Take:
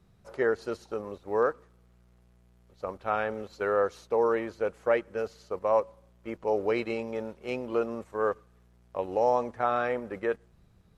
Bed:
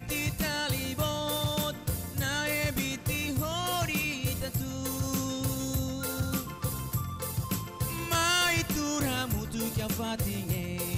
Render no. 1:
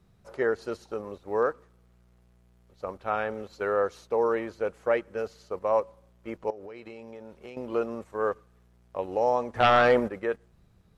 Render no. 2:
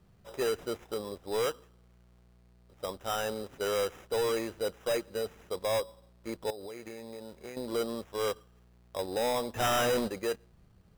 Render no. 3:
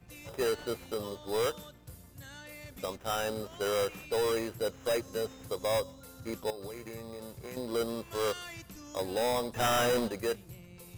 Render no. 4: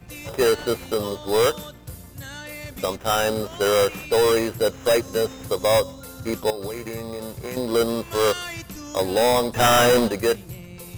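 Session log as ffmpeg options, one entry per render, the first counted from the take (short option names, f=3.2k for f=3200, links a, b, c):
-filter_complex "[0:a]asettb=1/sr,asplit=3[a][b][c];[a]atrim=end=6.504[d];[b]atrim=start=6.5:end=7.57,asetpts=PTS-STARTPTS,afade=t=in:d=0.004:c=qsin,afade=t=out:st=1.066:d=0.004:c=qsin,acompressor=threshold=-38dB:ratio=20:attack=3.2:release=140:knee=1:detection=peak[e];[c]atrim=start=7.566[f];[d][e]acrossfade=d=0.004:c1=hsin:c2=qsin[g];[g][f]acrossfade=d=0.004:c1=qsin:c2=hsin,asplit=3[h][i][j];[h]afade=t=out:st=9.54:d=0.02[k];[i]aeval=exprs='0.224*sin(PI/2*2.24*val(0)/0.224)':c=same,afade=t=in:st=9.54:d=0.02,afade=t=out:st=10.07:d=0.02[l];[j]afade=t=in:st=10.07:d=0.02[m];[k][l][m]amix=inputs=3:normalize=0"
-af "acrusher=samples=10:mix=1:aa=0.000001,asoftclip=type=tanh:threshold=-25dB"
-filter_complex "[1:a]volume=-18dB[a];[0:a][a]amix=inputs=2:normalize=0"
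-af "volume=11.5dB"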